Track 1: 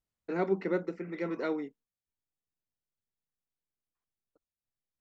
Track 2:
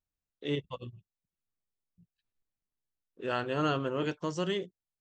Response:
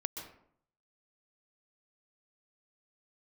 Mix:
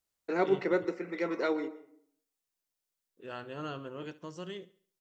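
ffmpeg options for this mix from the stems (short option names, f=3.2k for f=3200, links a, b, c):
-filter_complex "[0:a]bass=f=250:g=-11,treble=f=4k:g=5,volume=1.5dB,asplit=2[a][b];[b]volume=-9.5dB[c];[1:a]volume=-10dB,asplit=3[d][e][f];[d]atrim=end=0.85,asetpts=PTS-STARTPTS,afade=t=out:st=0.846:d=0.004:c=hsin[g];[e]atrim=start=0.85:end=3.11,asetpts=PTS-STARTPTS,volume=0[h];[f]atrim=start=3.11,asetpts=PTS-STARTPTS,afade=t=in:d=0.004:c=hsin[i];[g][h][i]concat=n=3:v=0:a=1,asplit=2[j][k];[k]volume=-18.5dB[l];[2:a]atrim=start_sample=2205[m];[c][m]afir=irnorm=-1:irlink=0[n];[l]aecho=0:1:70|140|210|280|350:1|0.39|0.152|0.0593|0.0231[o];[a][j][n][o]amix=inputs=4:normalize=0"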